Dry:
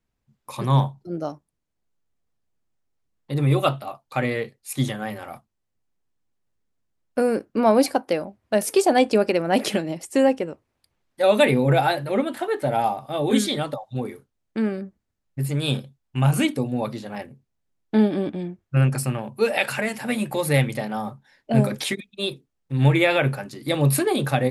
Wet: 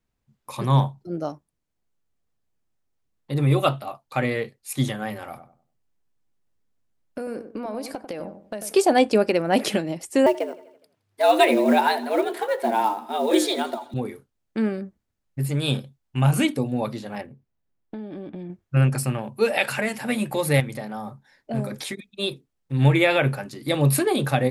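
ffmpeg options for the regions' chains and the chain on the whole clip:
ffmpeg -i in.wav -filter_complex "[0:a]asettb=1/sr,asplit=3[link_01][link_02][link_03];[link_01]atrim=end=5.284[link_04];[link_02]atrim=start=5.28:end=8.73,asetpts=PTS-STARTPTS,afade=type=in:duration=0.004:curve=qsin,afade=type=out:start_time=3.446:duration=0.004:curve=qsin,acompressor=threshold=-27dB:ratio=16:attack=3.2:release=140:knee=1:detection=peak,asplit=2[link_05][link_06];[link_06]adelay=95,lowpass=frequency=940:poles=1,volume=-8dB,asplit=2[link_07][link_08];[link_08]adelay=95,lowpass=frequency=940:poles=1,volume=0.33,asplit=2[link_09][link_10];[link_10]adelay=95,lowpass=frequency=940:poles=1,volume=0.33,asplit=2[link_11][link_12];[link_12]adelay=95,lowpass=frequency=940:poles=1,volume=0.33[link_13];[link_05][link_07][link_09][link_11][link_13]amix=inputs=5:normalize=0,atrim=end_sample=152145[link_14];[link_03]atrim=start=8.726[link_15];[link_04][link_14]acrossfade=duration=0.004:curve1=hsin:curve2=qsin[link_16];[link_16][link_15]acrossfade=duration=0.004:curve1=qsin:curve2=hsin,asettb=1/sr,asplit=3[link_17][link_18][link_19];[link_17]atrim=end=10.264[link_20];[link_18]atrim=start=10.26:end=13.94,asetpts=PTS-STARTPTS,afade=type=in:duration=0.004:curve=qsin,afade=type=out:start_time=3.676:duration=0.004:curve=qsin,acrusher=bits=7:mode=log:mix=0:aa=0.000001,afreqshift=100,aecho=1:1:83|166|249|332|415:0.112|0.0673|0.0404|0.0242|0.0145,atrim=end_sample=162288[link_21];[link_19]atrim=start=13.936[link_22];[link_20][link_21]acrossfade=duration=0.004:curve1=hsin:curve2=qsin[link_23];[link_23][link_22]acrossfade=duration=0.004:curve1=qsin:curve2=hsin,asettb=1/sr,asplit=3[link_24][link_25][link_26];[link_24]atrim=end=17.214[link_27];[link_25]atrim=start=17.21:end=18.5,asetpts=PTS-STARTPTS,afade=type=in:duration=0.004:curve=qsin,afade=type=out:start_time=1.286:duration=0.004:curve=qsin,equalizer=frequency=9700:width=0.38:gain=-11,acompressor=threshold=-31dB:ratio=16:attack=3.2:release=140:knee=1:detection=peak[link_28];[link_26]atrim=start=18.496[link_29];[link_27][link_28]acrossfade=duration=0.004:curve1=hsin:curve2=qsin[link_30];[link_30][link_29]acrossfade=duration=0.004:curve1=qsin:curve2=hsin,asettb=1/sr,asplit=3[link_31][link_32][link_33];[link_31]atrim=end=20.604[link_34];[link_32]atrim=start=20.6:end=22.14,asetpts=PTS-STARTPTS,afade=type=in:duration=0.004:curve=qsin,afade=type=out:start_time=1.536:duration=0.004:curve=qsin,equalizer=frequency=2900:width_type=o:width=0.45:gain=-5,acompressor=threshold=-36dB:ratio=1.5:attack=3.2:release=140:knee=1:detection=peak,asoftclip=type=hard:threshold=-18dB[link_35];[link_33]atrim=start=22.136[link_36];[link_34][link_35]acrossfade=duration=0.004:curve1=hsin:curve2=qsin[link_37];[link_37][link_36]acrossfade=duration=0.004:curve1=qsin:curve2=hsin" out.wav

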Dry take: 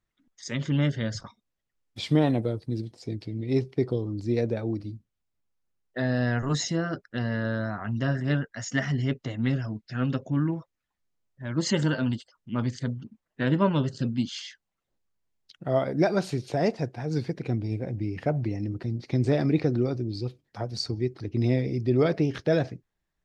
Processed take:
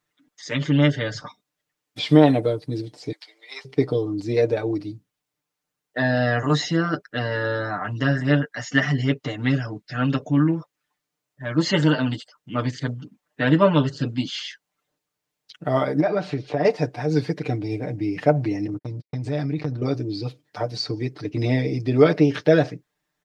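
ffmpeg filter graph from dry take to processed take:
ffmpeg -i in.wav -filter_complex "[0:a]asettb=1/sr,asplit=3[link_01][link_02][link_03];[link_01]atrim=end=3.124[link_04];[link_02]atrim=start=3.12:end=3.65,asetpts=PTS-STARTPTS,afade=type=in:duration=0.004:curve=qsin,afade=type=out:start_time=0.526:duration=0.004:curve=qsin,highpass=frequency=870:width=0.5412,highpass=frequency=870:width=1.3066,bandreject=frequency=2600:width=9.4[link_05];[link_03]atrim=start=3.646[link_06];[link_04][link_05]acrossfade=duration=0.004:curve1=hsin:curve2=qsin[link_07];[link_07][link_06]acrossfade=duration=0.004:curve1=qsin:curve2=hsin,asettb=1/sr,asplit=3[link_08][link_09][link_10];[link_08]atrim=end=16.004[link_11];[link_09]atrim=start=16:end=16.65,asetpts=PTS-STARTPTS,afade=type=in:duration=0.004:curve=qsin,afade=type=out:start_time=0.646:duration=0.004:curve=qsin,lowpass=2800,acompressor=threshold=-25dB:ratio=4:attack=3.2:release=140:knee=1:detection=peak[link_12];[link_10]atrim=start=16.646[link_13];[link_11][link_12]acrossfade=duration=0.004:curve1=hsin:curve2=qsin[link_14];[link_14][link_13]acrossfade=duration=0.004:curve1=qsin:curve2=hsin,asettb=1/sr,asplit=3[link_15][link_16][link_17];[link_15]atrim=end=18.674[link_18];[link_16]atrim=start=18.67:end=19.82,asetpts=PTS-STARTPTS,afade=type=in:duration=0.004:curve=qsin,afade=type=out:start_time=1.146:duration=0.004:curve=qsin,agate=range=-58dB:threshold=-34dB:ratio=16:release=100:detection=peak,asubboost=boost=9.5:cutoff=200,acompressor=threshold=-27dB:ratio=16:attack=3.2:release=140:knee=1:detection=peak[link_19];[link_17]atrim=start=19.816[link_20];[link_18][link_19]acrossfade=duration=0.004:curve1=hsin:curve2=qsin[link_21];[link_21][link_20]acrossfade=duration=0.004:curve1=qsin:curve2=hsin,highpass=frequency=280:poles=1,acrossover=split=4600[link_22][link_23];[link_23]acompressor=threshold=-54dB:ratio=4:attack=1:release=60[link_24];[link_22][link_24]amix=inputs=2:normalize=0,aecho=1:1:6.7:0.83,volume=6.5dB" out.wav

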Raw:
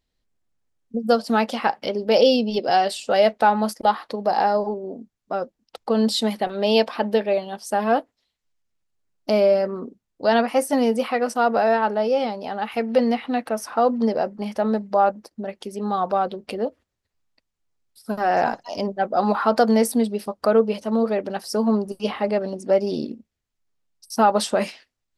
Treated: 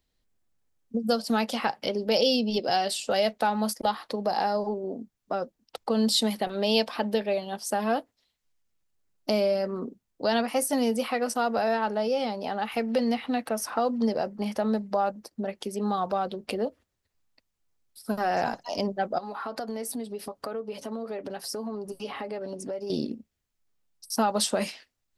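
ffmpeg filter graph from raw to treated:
ffmpeg -i in.wav -filter_complex "[0:a]asettb=1/sr,asplit=3[link_01][link_02][link_03];[link_01]atrim=end=19.184[link_04];[link_02]atrim=start=19.18:end=22.9,asetpts=PTS-STARTPTS,afade=type=in:duration=0.004:curve=qsin,afade=type=out:start_time=3.716:duration=0.004:curve=qsin,aecho=1:1:7.2:0.39,atrim=end_sample=164052,acompressor=threshold=-33dB:ratio=4:attack=3.2:release=140:knee=1:detection=peak[link_05];[link_03]atrim=start=22.896[link_06];[link_04][link_05]acrossfade=duration=0.004:curve1=hsin:curve2=qsin[link_07];[link_07][link_06]acrossfade=duration=0.004:curve1=qsin:curve2=hsin,highshelf=frequency=10000:gain=5.5,acrossover=split=170|3000[link_08][link_09][link_10];[link_09]acompressor=threshold=-29dB:ratio=2[link_11];[link_08][link_11][link_10]amix=inputs=3:normalize=0" out.wav

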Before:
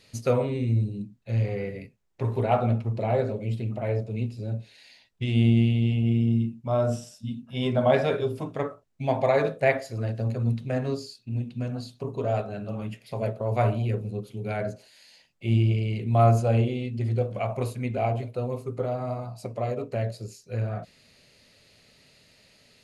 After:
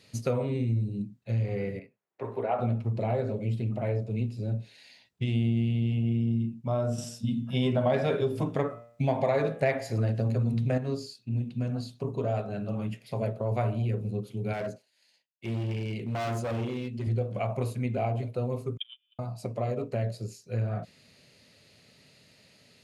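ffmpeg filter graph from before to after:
ffmpeg -i in.wav -filter_complex "[0:a]asettb=1/sr,asplit=3[link_01][link_02][link_03];[link_01]atrim=end=1.794[link_04];[link_02]atrim=start=1.79:end=2.59,asetpts=PTS-STARTPTS,afade=type=in:duration=0.004:curve=qsin,afade=type=out:start_time=0.796:duration=0.004:curve=qsin,highpass=110,acrossover=split=340 2400:gain=0.178 1 0.224[link_05][link_06][link_07];[link_05][link_06][link_07]amix=inputs=3:normalize=0,bandreject=frequency=860:width=25[link_08];[link_03]atrim=start=2.586[link_09];[link_04][link_08]acrossfade=duration=0.004:curve1=hsin:curve2=qsin[link_10];[link_10][link_09]acrossfade=duration=0.004:curve1=qsin:curve2=hsin,asettb=1/sr,asplit=3[link_11][link_12][link_13];[link_11]atrim=end=6.984[link_14];[link_12]atrim=start=6.98:end=10.78,asetpts=PTS-STARTPTS,afade=type=in:duration=0.004:curve=qsin,afade=type=out:start_time=3.796:duration=0.004:curve=qsin,bandreject=frequency=117.3:width_type=h:width=4,bandreject=frequency=234.6:width_type=h:width=4,bandreject=frequency=351.9:width_type=h:width=4,bandreject=frequency=469.2:width_type=h:width=4,bandreject=frequency=586.5:width_type=h:width=4,bandreject=frequency=703.8:width_type=h:width=4,bandreject=frequency=821.1:width_type=h:width=4,bandreject=frequency=938.4:width_type=h:width=4,bandreject=frequency=1055.7:width_type=h:width=4,bandreject=frequency=1173:width_type=h:width=4,bandreject=frequency=1290.3:width_type=h:width=4,bandreject=frequency=1407.6:width_type=h:width=4,bandreject=frequency=1524.9:width_type=h:width=4,bandreject=frequency=1642.2:width_type=h:width=4,bandreject=frequency=1759.5:width_type=h:width=4,bandreject=frequency=1876.8:width_type=h:width=4,bandreject=frequency=1994.1:width_type=h:width=4,bandreject=frequency=2111.4:width_type=h:width=4,bandreject=frequency=2228.7:width_type=h:width=4,bandreject=frequency=2346:width_type=h:width=4,bandreject=frequency=2463.3:width_type=h:width=4,bandreject=frequency=2580.6:width_type=h:width=4,bandreject=frequency=2697.9:width_type=h:width=4,bandreject=frequency=2815.2:width_type=h:width=4,bandreject=frequency=2932.5:width_type=h:width=4,bandreject=frequency=3049.8:width_type=h:width=4,bandreject=frequency=3167.1:width_type=h:width=4,bandreject=frequency=3284.4:width_type=h:width=4,bandreject=frequency=3401.7:width_type=h:width=4,bandreject=frequency=3519:width_type=h:width=4,acontrast=78[link_15];[link_13]atrim=start=10.776[link_16];[link_14][link_15]acrossfade=duration=0.004:curve1=hsin:curve2=qsin[link_17];[link_17][link_16]acrossfade=duration=0.004:curve1=qsin:curve2=hsin,asettb=1/sr,asplit=3[link_18][link_19][link_20];[link_18]atrim=end=14.534[link_21];[link_19]atrim=start=14.53:end=17.07,asetpts=PTS-STARTPTS,afade=type=in:duration=0.004:curve=qsin,afade=type=out:start_time=2.536:duration=0.004:curve=qsin,lowshelf=frequency=160:gain=-11.5,agate=range=-33dB:threshold=-47dB:ratio=3:release=100:detection=peak,asoftclip=type=hard:threshold=-28.5dB[link_22];[link_20]atrim=start=17.066[link_23];[link_21][link_22]acrossfade=duration=0.004:curve1=hsin:curve2=qsin[link_24];[link_24][link_23]acrossfade=duration=0.004:curve1=qsin:curve2=hsin,asettb=1/sr,asplit=3[link_25][link_26][link_27];[link_25]atrim=end=18.774[link_28];[link_26]atrim=start=18.77:end=19.19,asetpts=PTS-STARTPTS,afade=type=in:duration=0.004:curve=qsin,afade=type=out:start_time=0.416:duration=0.004:curve=qsin,highpass=frequency=170:width=0.5412,highpass=frequency=170:width=1.3066,lowpass=frequency=3100:width_type=q:width=0.5098,lowpass=frequency=3100:width_type=q:width=0.6013,lowpass=frequency=3100:width_type=q:width=0.9,lowpass=frequency=3100:width_type=q:width=2.563,afreqshift=-3700,agate=range=-43dB:threshold=-26dB:ratio=16:release=100:detection=peak[link_29];[link_27]atrim=start=19.186[link_30];[link_28][link_29]acrossfade=duration=0.004:curve1=hsin:curve2=qsin[link_31];[link_31][link_30]acrossfade=duration=0.004:curve1=qsin:curve2=hsin,highpass=110,lowshelf=frequency=200:gain=7.5,acompressor=threshold=-24dB:ratio=3,volume=-1.5dB" out.wav

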